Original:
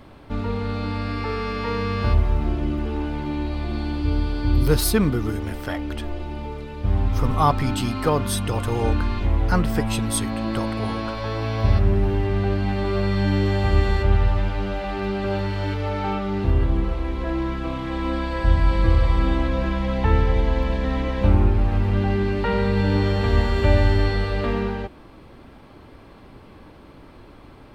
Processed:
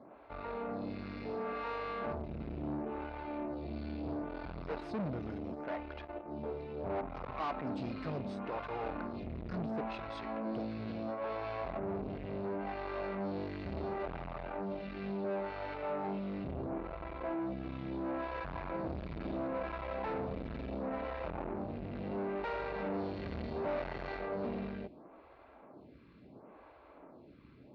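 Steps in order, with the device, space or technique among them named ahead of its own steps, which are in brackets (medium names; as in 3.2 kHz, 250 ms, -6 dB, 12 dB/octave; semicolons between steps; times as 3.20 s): 6.43–7.01 s: high-order bell 590 Hz +12.5 dB; vibe pedal into a guitar amplifier (lamp-driven phase shifter 0.72 Hz; valve stage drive 30 dB, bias 0.6; cabinet simulation 82–3700 Hz, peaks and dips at 100 Hz -10 dB, 650 Hz +6 dB, 1.8 kHz -4 dB, 3.2 kHz -9 dB); trim -4 dB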